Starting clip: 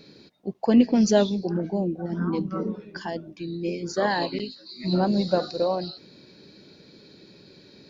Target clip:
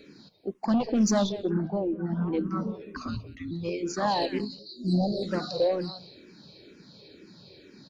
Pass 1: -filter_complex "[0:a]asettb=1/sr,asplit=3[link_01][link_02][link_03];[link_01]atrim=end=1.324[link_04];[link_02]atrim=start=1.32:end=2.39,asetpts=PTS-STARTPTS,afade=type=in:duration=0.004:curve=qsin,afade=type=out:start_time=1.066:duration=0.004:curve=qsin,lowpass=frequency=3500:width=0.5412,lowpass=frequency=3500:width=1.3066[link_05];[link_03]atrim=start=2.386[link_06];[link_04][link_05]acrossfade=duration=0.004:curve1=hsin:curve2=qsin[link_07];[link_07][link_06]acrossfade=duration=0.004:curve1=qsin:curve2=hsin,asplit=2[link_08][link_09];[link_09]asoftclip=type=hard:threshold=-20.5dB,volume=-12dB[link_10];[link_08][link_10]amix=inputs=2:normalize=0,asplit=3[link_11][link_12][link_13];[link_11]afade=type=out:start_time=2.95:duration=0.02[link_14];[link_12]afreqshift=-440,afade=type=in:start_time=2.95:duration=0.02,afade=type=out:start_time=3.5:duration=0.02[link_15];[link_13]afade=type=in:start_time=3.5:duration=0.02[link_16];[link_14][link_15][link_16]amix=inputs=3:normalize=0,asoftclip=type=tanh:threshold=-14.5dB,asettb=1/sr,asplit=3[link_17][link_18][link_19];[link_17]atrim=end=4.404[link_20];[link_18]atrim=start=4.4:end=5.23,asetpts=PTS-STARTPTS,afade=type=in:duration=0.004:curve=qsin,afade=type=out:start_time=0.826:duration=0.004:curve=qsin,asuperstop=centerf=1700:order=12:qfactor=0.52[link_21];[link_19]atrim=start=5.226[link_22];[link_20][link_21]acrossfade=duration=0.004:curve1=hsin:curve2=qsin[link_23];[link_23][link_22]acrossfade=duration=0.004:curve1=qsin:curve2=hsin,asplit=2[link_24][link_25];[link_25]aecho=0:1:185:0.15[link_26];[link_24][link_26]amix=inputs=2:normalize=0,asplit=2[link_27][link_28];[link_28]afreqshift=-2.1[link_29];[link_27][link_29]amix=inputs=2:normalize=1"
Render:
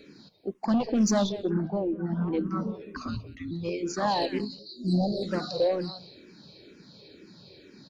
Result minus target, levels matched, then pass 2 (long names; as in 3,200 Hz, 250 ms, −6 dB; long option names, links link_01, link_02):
hard clipping: distortion +7 dB
-filter_complex "[0:a]asettb=1/sr,asplit=3[link_01][link_02][link_03];[link_01]atrim=end=1.324[link_04];[link_02]atrim=start=1.32:end=2.39,asetpts=PTS-STARTPTS,afade=type=in:duration=0.004:curve=qsin,afade=type=out:start_time=1.066:duration=0.004:curve=qsin,lowpass=frequency=3500:width=0.5412,lowpass=frequency=3500:width=1.3066[link_05];[link_03]atrim=start=2.386[link_06];[link_04][link_05]acrossfade=duration=0.004:curve1=hsin:curve2=qsin[link_07];[link_07][link_06]acrossfade=duration=0.004:curve1=qsin:curve2=hsin,asplit=2[link_08][link_09];[link_09]asoftclip=type=hard:threshold=-14.5dB,volume=-12dB[link_10];[link_08][link_10]amix=inputs=2:normalize=0,asplit=3[link_11][link_12][link_13];[link_11]afade=type=out:start_time=2.95:duration=0.02[link_14];[link_12]afreqshift=-440,afade=type=in:start_time=2.95:duration=0.02,afade=type=out:start_time=3.5:duration=0.02[link_15];[link_13]afade=type=in:start_time=3.5:duration=0.02[link_16];[link_14][link_15][link_16]amix=inputs=3:normalize=0,asoftclip=type=tanh:threshold=-14.5dB,asettb=1/sr,asplit=3[link_17][link_18][link_19];[link_17]atrim=end=4.404[link_20];[link_18]atrim=start=4.4:end=5.23,asetpts=PTS-STARTPTS,afade=type=in:duration=0.004:curve=qsin,afade=type=out:start_time=0.826:duration=0.004:curve=qsin,asuperstop=centerf=1700:order=12:qfactor=0.52[link_21];[link_19]atrim=start=5.226[link_22];[link_20][link_21]acrossfade=duration=0.004:curve1=hsin:curve2=qsin[link_23];[link_23][link_22]acrossfade=duration=0.004:curve1=qsin:curve2=hsin,asplit=2[link_24][link_25];[link_25]aecho=0:1:185:0.15[link_26];[link_24][link_26]amix=inputs=2:normalize=0,asplit=2[link_27][link_28];[link_28]afreqshift=-2.1[link_29];[link_27][link_29]amix=inputs=2:normalize=1"